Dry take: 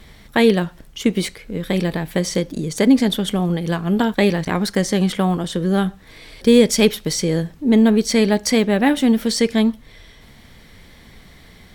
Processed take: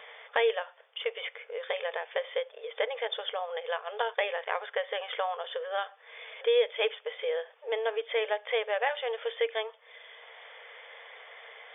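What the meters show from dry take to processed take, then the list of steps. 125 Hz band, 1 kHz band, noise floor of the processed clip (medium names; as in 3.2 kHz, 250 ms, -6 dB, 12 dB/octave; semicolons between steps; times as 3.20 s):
under -40 dB, -7.0 dB, -58 dBFS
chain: brick-wall FIR band-pass 430–3600 Hz; three bands compressed up and down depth 40%; trim -7 dB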